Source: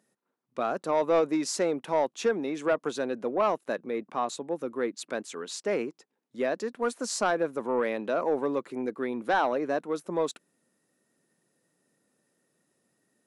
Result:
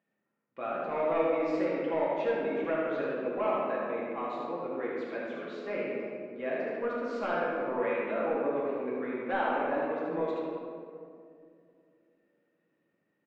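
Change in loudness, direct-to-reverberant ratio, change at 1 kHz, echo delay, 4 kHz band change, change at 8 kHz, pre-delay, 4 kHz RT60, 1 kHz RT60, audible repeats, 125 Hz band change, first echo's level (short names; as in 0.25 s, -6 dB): -2.5 dB, -7.0 dB, -3.0 dB, 76 ms, -11.0 dB, under -30 dB, 4 ms, 1.1 s, 2.1 s, 1, -3.0 dB, -4.0 dB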